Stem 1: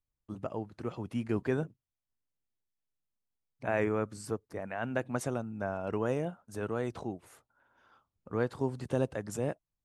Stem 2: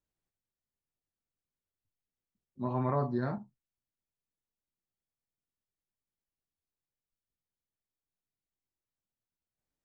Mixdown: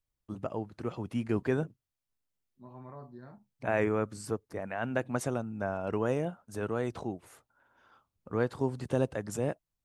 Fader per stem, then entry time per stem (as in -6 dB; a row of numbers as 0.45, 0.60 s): +1.5, -16.5 dB; 0.00, 0.00 s